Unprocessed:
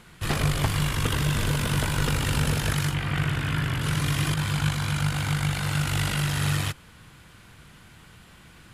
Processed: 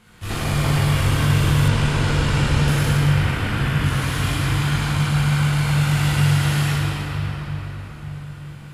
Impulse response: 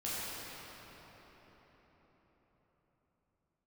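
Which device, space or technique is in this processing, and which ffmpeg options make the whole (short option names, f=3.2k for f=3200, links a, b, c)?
cathedral: -filter_complex "[1:a]atrim=start_sample=2205[a];[0:a][a]afir=irnorm=-1:irlink=0,asettb=1/sr,asplit=3[b][c][d];[b]atrim=end=1.684[e];[c]atrim=start=1.68:end=2.68,asetpts=PTS-STARTPTS,afade=t=in:d=0.004:c=qsin,afade=t=out:st=0.996:d=0.004:c=qsin,lowpass=7.8k[f];[d]atrim=start=2.676[g];[e][f]acrossfade=d=0.004:c1=hsin:c2=qsin[h];[h][g]acrossfade=d=0.004:c1=qsin:c2=hsin"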